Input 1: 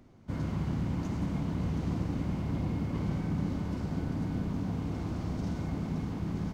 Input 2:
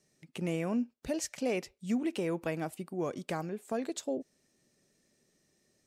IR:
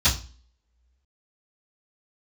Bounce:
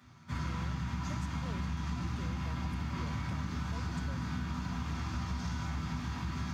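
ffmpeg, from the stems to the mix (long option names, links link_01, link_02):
-filter_complex "[0:a]highpass=110,lowshelf=frequency=790:width_type=q:width=1.5:gain=-12,volume=1dB,asplit=2[link_01][link_02];[link_02]volume=-9.5dB[link_03];[1:a]volume=-15dB[link_04];[2:a]atrim=start_sample=2205[link_05];[link_03][link_05]afir=irnorm=-1:irlink=0[link_06];[link_01][link_04][link_06]amix=inputs=3:normalize=0,acompressor=threshold=-32dB:ratio=6"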